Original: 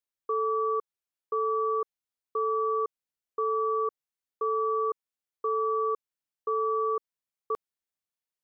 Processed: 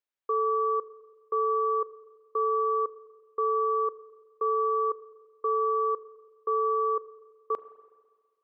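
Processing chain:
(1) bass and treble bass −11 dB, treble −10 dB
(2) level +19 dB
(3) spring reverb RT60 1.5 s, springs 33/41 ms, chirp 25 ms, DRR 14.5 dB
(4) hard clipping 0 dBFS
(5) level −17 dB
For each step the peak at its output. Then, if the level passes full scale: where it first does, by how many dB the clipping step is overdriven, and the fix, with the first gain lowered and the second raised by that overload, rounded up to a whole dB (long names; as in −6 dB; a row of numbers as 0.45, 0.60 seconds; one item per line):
−22.0, −3.0, −2.5, −2.5, −19.5 dBFS
no step passes full scale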